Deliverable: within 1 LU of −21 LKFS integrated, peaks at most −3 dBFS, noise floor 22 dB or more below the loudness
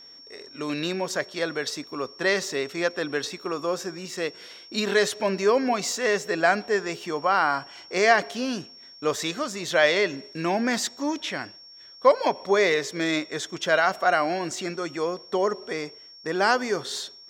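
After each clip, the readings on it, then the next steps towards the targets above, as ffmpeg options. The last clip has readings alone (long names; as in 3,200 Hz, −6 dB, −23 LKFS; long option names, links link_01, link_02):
interfering tone 5,500 Hz; level of the tone −45 dBFS; integrated loudness −25.5 LKFS; sample peak −4.0 dBFS; target loudness −21.0 LKFS
→ -af "bandreject=frequency=5500:width=30"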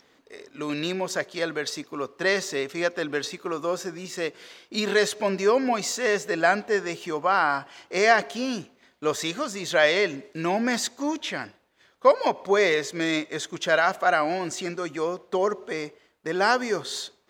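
interfering tone none found; integrated loudness −25.5 LKFS; sample peak −4.0 dBFS; target loudness −21.0 LKFS
→ -af "volume=4.5dB,alimiter=limit=-3dB:level=0:latency=1"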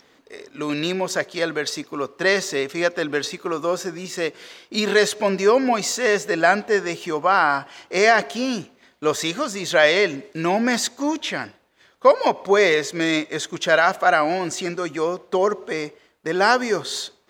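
integrated loudness −21.0 LKFS; sample peak −3.0 dBFS; background noise floor −58 dBFS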